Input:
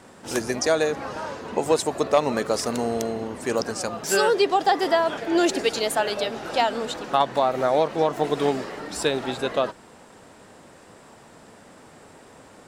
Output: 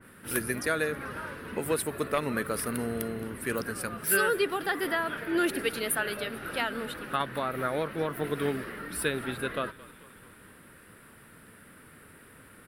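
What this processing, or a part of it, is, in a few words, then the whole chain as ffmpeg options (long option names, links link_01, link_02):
smiley-face EQ: -filter_complex "[0:a]firequalizer=gain_entry='entry(450,0);entry(770,-11);entry(1400,5);entry(6900,-19);entry(10000,9)':delay=0.05:min_phase=1,lowshelf=frequency=170:gain=3.5,equalizer=frequency=450:width_type=o:width=2:gain=-5,highshelf=frequency=5600:gain=4.5,asplit=6[link_01][link_02][link_03][link_04][link_05][link_06];[link_02]adelay=219,afreqshift=-54,volume=-20.5dB[link_07];[link_03]adelay=438,afreqshift=-108,volume=-24.8dB[link_08];[link_04]adelay=657,afreqshift=-162,volume=-29.1dB[link_09];[link_05]adelay=876,afreqshift=-216,volume=-33.4dB[link_10];[link_06]adelay=1095,afreqshift=-270,volume=-37.7dB[link_11];[link_01][link_07][link_08][link_09][link_10][link_11]amix=inputs=6:normalize=0,adynamicequalizer=threshold=0.0112:dfrequency=2300:dqfactor=0.7:tfrequency=2300:tqfactor=0.7:attack=5:release=100:ratio=0.375:range=1.5:mode=cutabove:tftype=highshelf,volume=-3dB"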